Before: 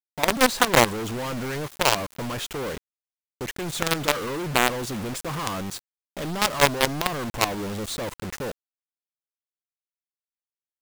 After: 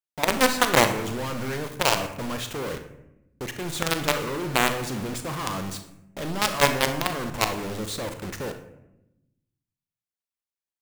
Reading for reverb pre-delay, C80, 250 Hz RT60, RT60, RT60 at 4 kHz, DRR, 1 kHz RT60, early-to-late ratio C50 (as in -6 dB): 37 ms, 12.5 dB, 1.5 s, 0.90 s, 0.50 s, 7.0 dB, 0.80 s, 9.0 dB